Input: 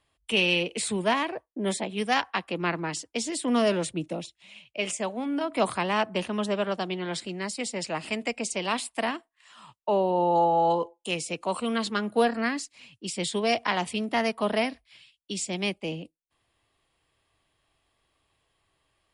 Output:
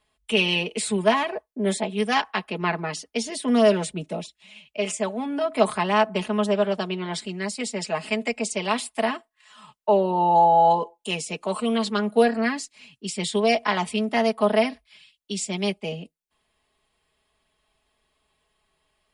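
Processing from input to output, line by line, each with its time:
2.36–3.47 notch 7600 Hz, Q 5.4
whole clip: dynamic EQ 640 Hz, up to +3 dB, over -36 dBFS, Q 1; comb 4.7 ms, depth 73%

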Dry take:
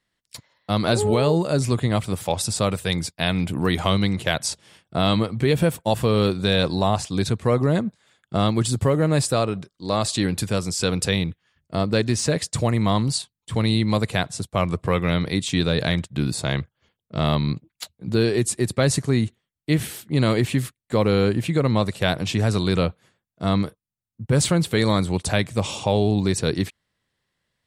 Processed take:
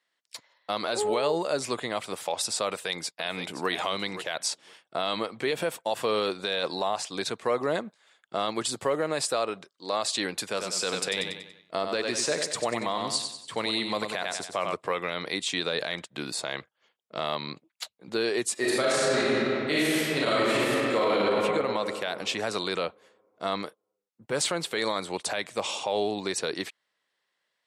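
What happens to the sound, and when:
2.67–3.69 echo throw 0.52 s, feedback 10%, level -12.5 dB
10.44–14.74 feedback echo 94 ms, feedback 44%, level -7.5 dB
18.53–21.13 reverb throw, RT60 2.5 s, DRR -9 dB
whole clip: HPF 500 Hz 12 dB/oct; high shelf 11000 Hz -12 dB; limiter -16 dBFS

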